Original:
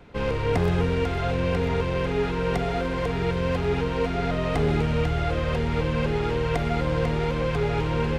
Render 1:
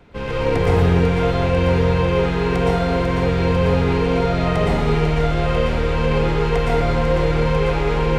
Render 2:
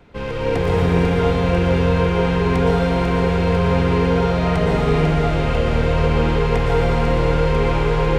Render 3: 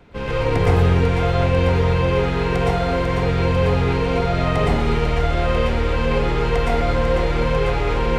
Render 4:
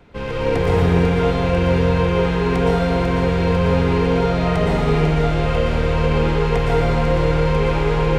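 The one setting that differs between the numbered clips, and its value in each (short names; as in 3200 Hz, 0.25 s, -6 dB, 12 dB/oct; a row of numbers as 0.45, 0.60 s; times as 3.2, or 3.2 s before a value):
plate-style reverb, RT60: 1.1, 5.3, 0.53, 2.5 s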